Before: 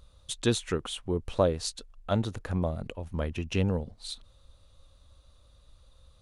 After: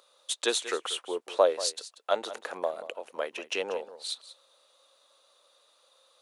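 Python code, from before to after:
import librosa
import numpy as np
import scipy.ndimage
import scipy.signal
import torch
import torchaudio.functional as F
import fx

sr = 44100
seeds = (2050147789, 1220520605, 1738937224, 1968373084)

y = scipy.signal.sosfilt(scipy.signal.butter(4, 460.0, 'highpass', fs=sr, output='sos'), x)
y = y + 10.0 ** (-15.0 / 20.0) * np.pad(y, (int(187 * sr / 1000.0), 0))[:len(y)]
y = y * 10.0 ** (4.0 / 20.0)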